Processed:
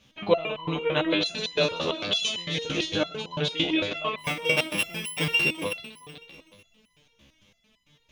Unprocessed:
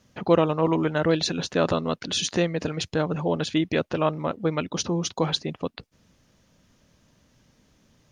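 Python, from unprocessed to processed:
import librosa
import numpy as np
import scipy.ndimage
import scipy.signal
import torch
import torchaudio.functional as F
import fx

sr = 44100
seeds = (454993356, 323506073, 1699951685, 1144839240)

y = fx.sample_sort(x, sr, block=16, at=(4.17, 5.37))
y = fx.band_shelf(y, sr, hz=2900.0, db=11.0, octaves=1.0)
y = fx.doubler(y, sr, ms=18.0, db=-13.5)
y = fx.echo_heads(y, sr, ms=125, heads='first and third', feedback_pct=43, wet_db=-11.5)
y = fx.resonator_held(y, sr, hz=8.9, low_hz=69.0, high_hz=1000.0)
y = y * librosa.db_to_amplitude(8.0)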